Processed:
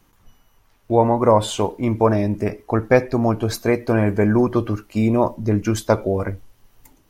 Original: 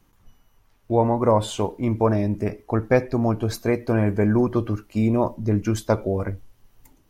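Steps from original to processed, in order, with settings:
low-shelf EQ 320 Hz −4 dB
level +5 dB

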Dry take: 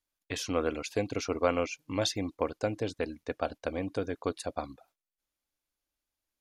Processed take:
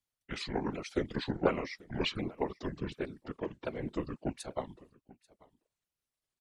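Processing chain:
pitch shifter swept by a sawtooth −9 semitones, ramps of 730 ms
single-tap delay 838 ms −23 dB
random phases in short frames
level −2.5 dB

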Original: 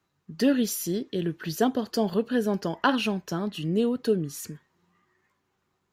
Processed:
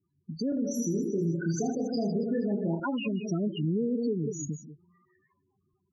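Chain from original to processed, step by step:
low-shelf EQ 300 Hz +3.5 dB
reverb whose tail is shaped and stops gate 210 ms rising, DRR 10 dB
downward compressor 12 to 1, threshold −27 dBFS, peak gain reduction 12.5 dB
parametric band 6,500 Hz +8.5 dB 0.35 octaves
spectral peaks only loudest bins 8
0:00.49–0:02.80: reverse bouncing-ball delay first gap 30 ms, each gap 1.6×, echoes 5
brickwall limiter −24 dBFS, peak gain reduction 5 dB
automatic gain control gain up to 3 dB

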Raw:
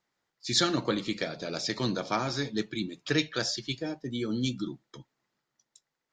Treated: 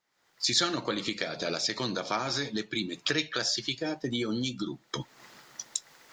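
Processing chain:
camcorder AGC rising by 51 dB per second
low-shelf EQ 400 Hz −8 dB

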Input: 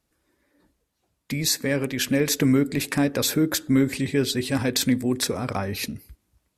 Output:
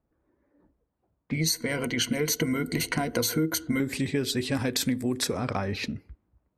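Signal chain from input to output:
low-pass that shuts in the quiet parts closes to 1,000 Hz, open at −19.5 dBFS
0:01.34–0:03.80: EQ curve with evenly spaced ripples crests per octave 1.9, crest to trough 16 dB
downward compressor 6 to 1, threshold −23 dBFS, peak gain reduction 10.5 dB

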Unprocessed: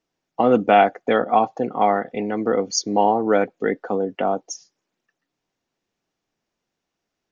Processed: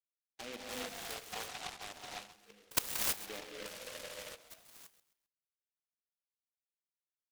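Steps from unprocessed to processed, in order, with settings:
spectral dynamics exaggerated over time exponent 2
high-pass filter 150 Hz 6 dB per octave
first difference
output level in coarse steps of 23 dB
all-pass phaser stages 8, 0.68 Hz, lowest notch 210–1,800 Hz
reverb whose tail is shaped and stops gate 350 ms rising, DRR −2.5 dB
healed spectral selection 0:03.73–0:04.32, 460–2,100 Hz before
repeating echo 132 ms, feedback 35%, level −15 dB
short delay modulated by noise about 2,300 Hz, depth 0.24 ms
level +3.5 dB

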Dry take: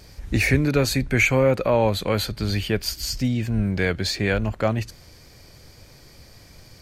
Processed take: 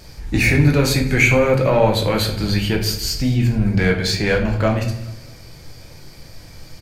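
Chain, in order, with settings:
in parallel at −3.5 dB: soft clipping −19.5 dBFS, distortion −10 dB
on the sum: repeating echo 211 ms, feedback 46%, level −21.5 dB
rectangular room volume 110 cubic metres, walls mixed, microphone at 0.69 metres
level −1 dB

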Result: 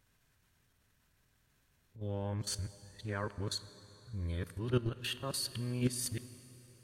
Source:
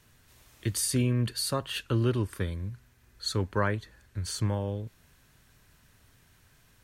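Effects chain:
played backwards from end to start
noise reduction from a noise print of the clip's start 7 dB
output level in coarse steps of 12 dB
transient designer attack −3 dB, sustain −8 dB
dense smooth reverb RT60 3.8 s, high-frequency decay 0.85×, DRR 14 dB

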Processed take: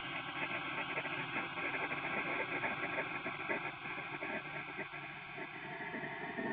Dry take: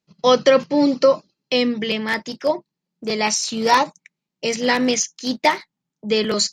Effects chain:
extreme stretch with random phases 19×, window 0.50 s, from 0:02.01
formant resonators in series e
gate on every frequency bin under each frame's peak −25 dB weak
level +13.5 dB

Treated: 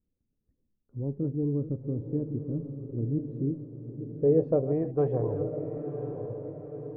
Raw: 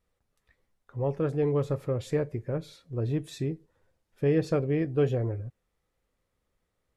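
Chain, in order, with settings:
delay that plays each chunk backwards 289 ms, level −13 dB
low-pass filter sweep 270 Hz → 880 Hz, 0:03.30–0:05.14
dynamic equaliser 1,000 Hz, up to +4 dB, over −44 dBFS, Q 2.5
on a send: feedback delay with all-pass diffusion 1,001 ms, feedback 50%, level −8 dB
on the sum: level −3.5 dB

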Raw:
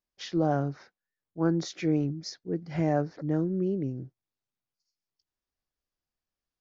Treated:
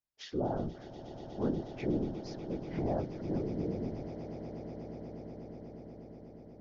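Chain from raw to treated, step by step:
treble cut that deepens with the level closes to 1,000 Hz, closed at −25.5 dBFS
random phases in short frames
echo that builds up and dies away 121 ms, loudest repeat 8, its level −16.5 dB
level −7 dB

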